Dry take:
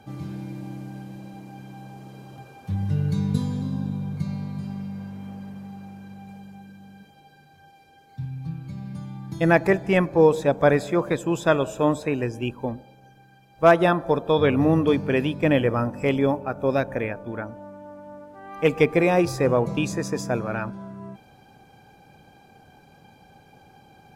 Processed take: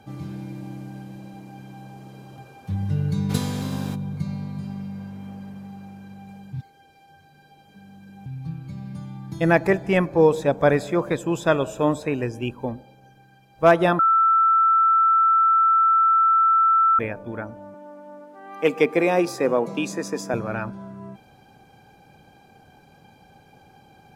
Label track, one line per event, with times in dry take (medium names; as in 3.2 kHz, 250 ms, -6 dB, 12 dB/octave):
3.290000	3.940000	spectral contrast reduction exponent 0.66
6.530000	8.260000	reverse
13.990000	16.990000	bleep 1.33 kHz -14 dBFS
17.740000	20.340000	high-pass 200 Hz 24 dB/octave